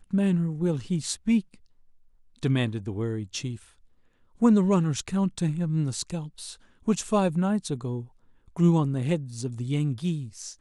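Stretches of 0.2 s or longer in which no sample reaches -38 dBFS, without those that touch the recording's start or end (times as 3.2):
1.54–2.43
3.57–4.41
6.54–6.87
8.05–8.56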